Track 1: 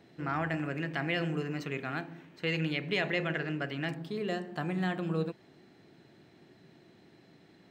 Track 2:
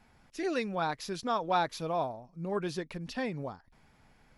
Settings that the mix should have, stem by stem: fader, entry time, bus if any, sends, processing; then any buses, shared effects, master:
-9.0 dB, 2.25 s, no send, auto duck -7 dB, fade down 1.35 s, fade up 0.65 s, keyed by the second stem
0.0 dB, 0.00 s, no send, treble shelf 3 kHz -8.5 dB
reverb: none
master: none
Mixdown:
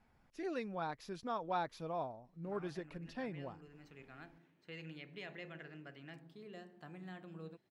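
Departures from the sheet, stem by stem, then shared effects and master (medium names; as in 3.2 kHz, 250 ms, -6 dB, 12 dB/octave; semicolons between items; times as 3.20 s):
stem 1 -9.0 dB -> -18.0 dB; stem 2 0.0 dB -> -8.0 dB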